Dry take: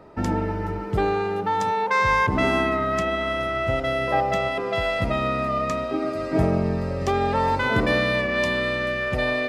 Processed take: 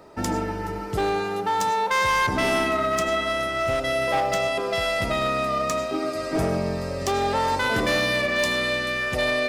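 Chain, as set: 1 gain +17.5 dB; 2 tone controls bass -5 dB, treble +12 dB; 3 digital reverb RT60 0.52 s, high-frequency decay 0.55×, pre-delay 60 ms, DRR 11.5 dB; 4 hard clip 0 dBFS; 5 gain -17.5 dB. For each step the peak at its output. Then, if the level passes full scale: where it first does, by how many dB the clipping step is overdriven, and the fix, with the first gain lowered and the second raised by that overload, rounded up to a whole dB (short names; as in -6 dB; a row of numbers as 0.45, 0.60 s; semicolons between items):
+10.0, +9.0, +9.0, 0.0, -17.5 dBFS; step 1, 9.0 dB; step 1 +8.5 dB, step 5 -8.5 dB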